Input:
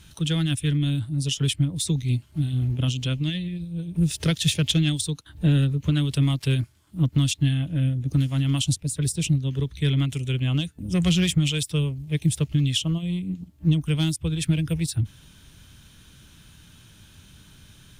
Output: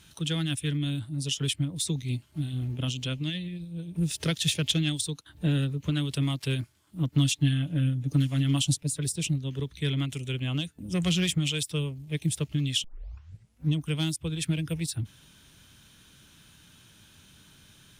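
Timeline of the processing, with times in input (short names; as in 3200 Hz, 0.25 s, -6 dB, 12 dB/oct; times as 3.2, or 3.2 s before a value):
7.12–8.98 comb 6.9 ms
12.84 tape start 0.90 s
whole clip: low shelf 110 Hz -11.5 dB; gain -2.5 dB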